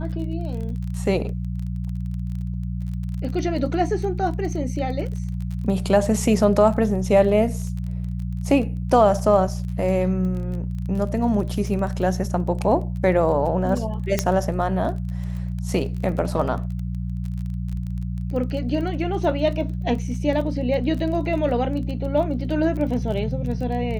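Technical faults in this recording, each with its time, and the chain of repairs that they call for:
crackle 21 per s -30 dBFS
hum 60 Hz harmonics 3 -27 dBFS
14.19 s: pop -5 dBFS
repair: de-click; de-hum 60 Hz, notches 3

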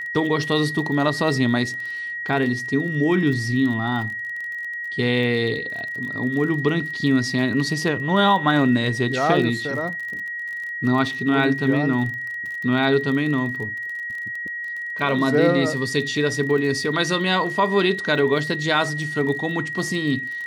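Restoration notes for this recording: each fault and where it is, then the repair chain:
crackle 31 per s -30 dBFS
whine 1.9 kHz -27 dBFS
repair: de-click; band-stop 1.9 kHz, Q 30

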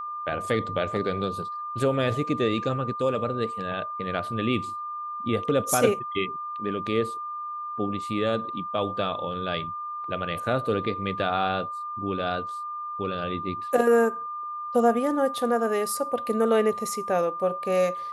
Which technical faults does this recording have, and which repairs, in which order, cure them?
whine 1.2 kHz -31 dBFS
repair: band-stop 1.2 kHz, Q 30

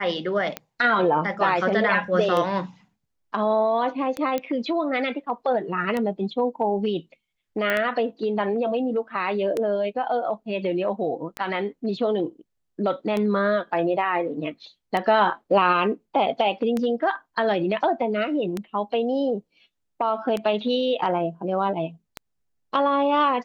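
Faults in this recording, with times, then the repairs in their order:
tick 33 1/3 rpm -13 dBFS
4.38 s: pop -13 dBFS
7.70 s: pop -11 dBFS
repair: de-click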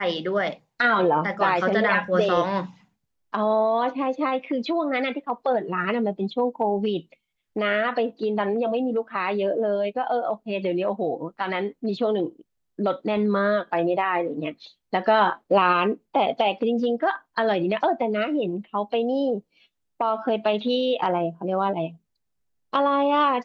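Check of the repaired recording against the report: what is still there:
nothing left

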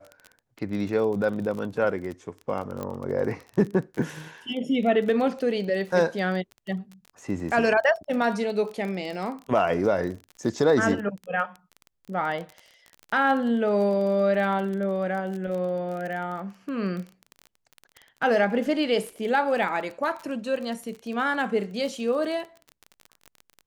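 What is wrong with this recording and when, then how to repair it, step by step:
crackle 27 per s -32 dBFS
2.83 s: pop -19 dBFS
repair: de-click

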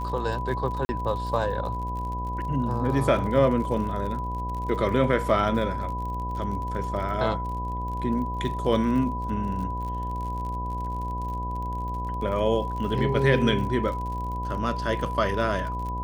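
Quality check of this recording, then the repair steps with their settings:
buzz 60 Hz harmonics 18 -32 dBFS
crackle 48 per s -34 dBFS
whine 990 Hz -31 dBFS
0.85–0.89 s: dropout 40 ms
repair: de-click; de-hum 60 Hz, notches 18; band-stop 990 Hz, Q 30; interpolate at 0.85 s, 40 ms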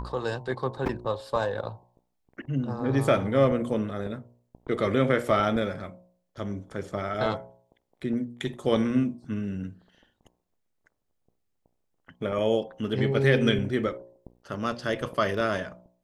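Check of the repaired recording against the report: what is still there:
nothing left

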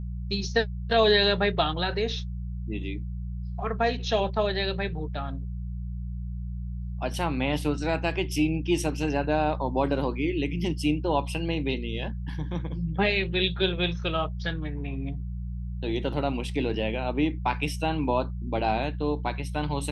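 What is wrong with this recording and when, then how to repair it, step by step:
hum 60 Hz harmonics 3 -33 dBFS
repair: de-hum 60 Hz, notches 3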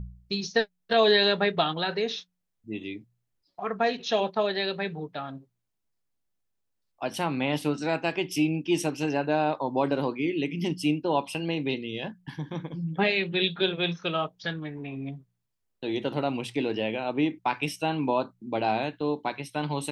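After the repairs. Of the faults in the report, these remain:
nothing left

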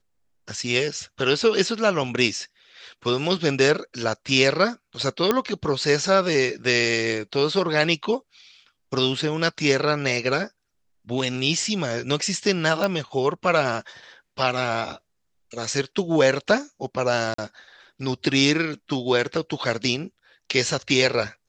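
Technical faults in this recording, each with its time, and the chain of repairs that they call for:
5.31 s: pop -6 dBFS
12.84 s: pop -10 dBFS
17.34–17.38 s: dropout 44 ms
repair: de-click; interpolate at 17.34 s, 44 ms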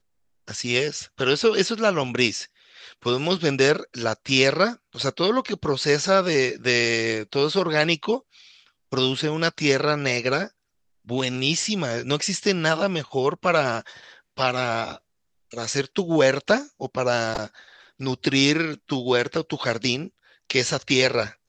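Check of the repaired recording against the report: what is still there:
nothing left

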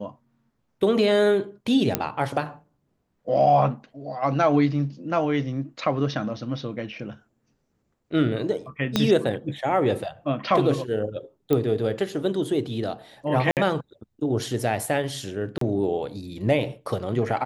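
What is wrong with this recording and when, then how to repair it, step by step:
1.95 s: pop -4 dBFS
8.96 s: pop -7 dBFS
11.53 s: pop -11 dBFS
13.51–13.57 s: dropout 58 ms
15.58–15.61 s: dropout 33 ms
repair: de-click; interpolate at 13.51 s, 58 ms; interpolate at 15.58 s, 33 ms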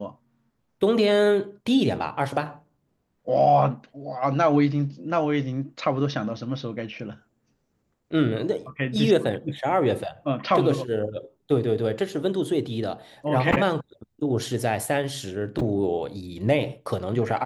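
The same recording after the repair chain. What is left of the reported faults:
8.96 s: pop

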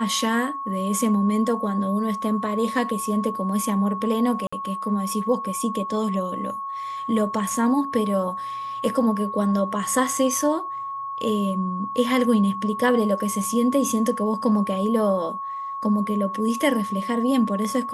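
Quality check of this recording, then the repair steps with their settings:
whine 1.1 kHz -28 dBFS
4.47–4.53 s: dropout 55 ms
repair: band-stop 1.1 kHz, Q 30; interpolate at 4.47 s, 55 ms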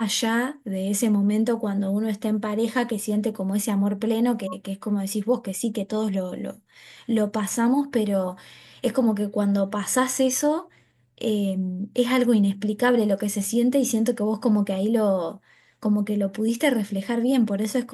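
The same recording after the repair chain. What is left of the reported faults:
nothing left

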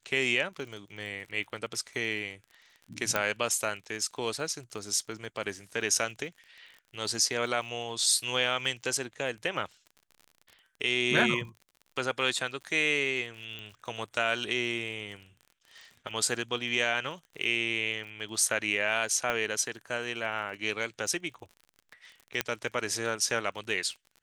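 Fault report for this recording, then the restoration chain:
crackle 41 per s -41 dBFS
3.16 s: pop -12 dBFS
13.59 s: pop -27 dBFS
19.30 s: pop -16 dBFS
22.41 s: pop -10 dBFS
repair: de-click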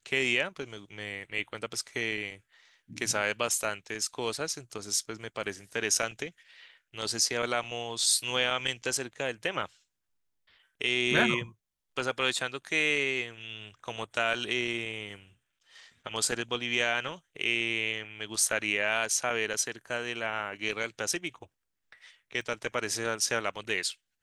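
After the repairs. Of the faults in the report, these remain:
3.16 s: pop
22.41 s: pop

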